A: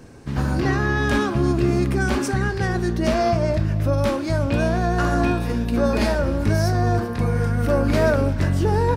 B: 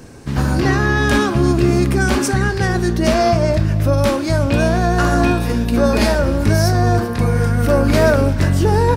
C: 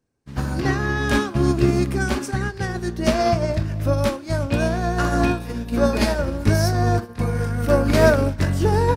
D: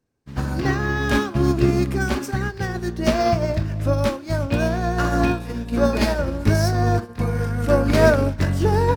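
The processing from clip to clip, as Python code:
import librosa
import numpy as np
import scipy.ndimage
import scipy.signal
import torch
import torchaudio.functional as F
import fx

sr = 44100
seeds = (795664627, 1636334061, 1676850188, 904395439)

y1 = fx.high_shelf(x, sr, hz=4500.0, db=5.5)
y1 = F.gain(torch.from_numpy(y1), 5.0).numpy()
y2 = fx.upward_expand(y1, sr, threshold_db=-35.0, expansion=2.5)
y3 = np.interp(np.arange(len(y2)), np.arange(len(y2))[::2], y2[::2])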